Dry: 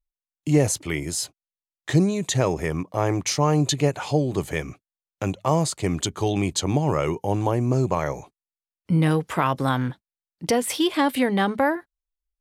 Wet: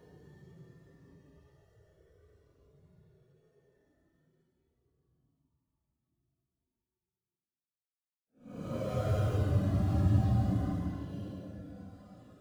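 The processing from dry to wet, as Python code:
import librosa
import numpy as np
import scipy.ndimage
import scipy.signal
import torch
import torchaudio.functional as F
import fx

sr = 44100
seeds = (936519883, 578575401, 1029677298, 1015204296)

y = fx.halfwave_hold(x, sr)
y = fx.dynamic_eq(y, sr, hz=2300.0, q=4.2, threshold_db=-43.0, ratio=4.0, max_db=-7)
y = fx.rev_gated(y, sr, seeds[0], gate_ms=450, shape='falling', drr_db=8.0)
y = fx.paulstretch(y, sr, seeds[1], factor=20.0, window_s=0.05, from_s=4.78)
y = fx.spectral_expand(y, sr, expansion=1.5)
y = y * librosa.db_to_amplitude(-8.5)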